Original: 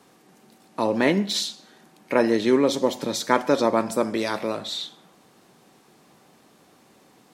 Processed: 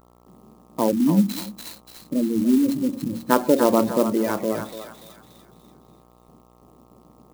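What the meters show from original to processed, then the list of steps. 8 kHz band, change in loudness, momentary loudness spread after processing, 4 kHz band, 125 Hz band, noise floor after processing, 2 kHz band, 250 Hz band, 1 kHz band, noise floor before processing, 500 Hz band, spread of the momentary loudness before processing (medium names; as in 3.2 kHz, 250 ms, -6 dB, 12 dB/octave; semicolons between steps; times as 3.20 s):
-2.0 dB, +1.5 dB, 19 LU, -9.0 dB, +5.0 dB, -55 dBFS, -6.5 dB, +4.5 dB, -0.5 dB, -57 dBFS, -1.0 dB, 10 LU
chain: time-frequency box 0.91–3.30 s, 340–3900 Hz -13 dB; level-controlled noise filter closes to 600 Hz, open at -17.5 dBFS; spectral gate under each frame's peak -15 dB strong; de-hum 46.05 Hz, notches 9; gate with hold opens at -50 dBFS; bass shelf 320 Hz +10 dB; mains buzz 60 Hz, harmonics 22, -55 dBFS -2 dB/octave; on a send: thinning echo 290 ms, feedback 48%, high-pass 1.2 kHz, level -4 dB; on the sum: sampling jitter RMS 0.045 ms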